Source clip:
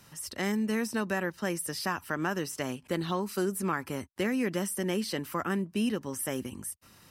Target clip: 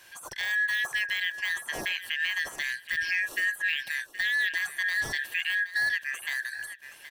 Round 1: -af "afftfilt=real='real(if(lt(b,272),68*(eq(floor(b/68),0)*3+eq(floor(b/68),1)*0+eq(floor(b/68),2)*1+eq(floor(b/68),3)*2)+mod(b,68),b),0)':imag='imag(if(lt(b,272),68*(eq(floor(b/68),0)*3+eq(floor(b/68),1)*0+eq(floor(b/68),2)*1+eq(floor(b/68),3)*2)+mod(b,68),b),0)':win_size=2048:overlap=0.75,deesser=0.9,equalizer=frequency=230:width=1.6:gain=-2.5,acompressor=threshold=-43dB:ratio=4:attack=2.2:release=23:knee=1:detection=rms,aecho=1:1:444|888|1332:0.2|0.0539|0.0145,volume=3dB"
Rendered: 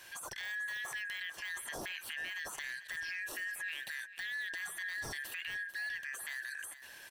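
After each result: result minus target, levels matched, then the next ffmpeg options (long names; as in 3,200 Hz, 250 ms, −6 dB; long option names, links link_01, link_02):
downward compressor: peak gain reduction +14.5 dB; echo 328 ms early
-af "afftfilt=real='real(if(lt(b,272),68*(eq(floor(b/68),0)*3+eq(floor(b/68),1)*0+eq(floor(b/68),2)*1+eq(floor(b/68),3)*2)+mod(b,68),b),0)':imag='imag(if(lt(b,272),68*(eq(floor(b/68),0)*3+eq(floor(b/68),1)*0+eq(floor(b/68),2)*1+eq(floor(b/68),3)*2)+mod(b,68),b),0)':win_size=2048:overlap=0.75,deesser=0.9,equalizer=frequency=230:width=1.6:gain=-2.5,aecho=1:1:444|888|1332:0.2|0.0539|0.0145,volume=3dB"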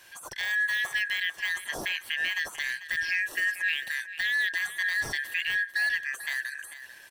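echo 328 ms early
-af "afftfilt=real='real(if(lt(b,272),68*(eq(floor(b/68),0)*3+eq(floor(b/68),1)*0+eq(floor(b/68),2)*1+eq(floor(b/68),3)*2)+mod(b,68),b),0)':imag='imag(if(lt(b,272),68*(eq(floor(b/68),0)*3+eq(floor(b/68),1)*0+eq(floor(b/68),2)*1+eq(floor(b/68),3)*2)+mod(b,68),b),0)':win_size=2048:overlap=0.75,deesser=0.9,equalizer=frequency=230:width=1.6:gain=-2.5,aecho=1:1:772|1544|2316:0.2|0.0539|0.0145,volume=3dB"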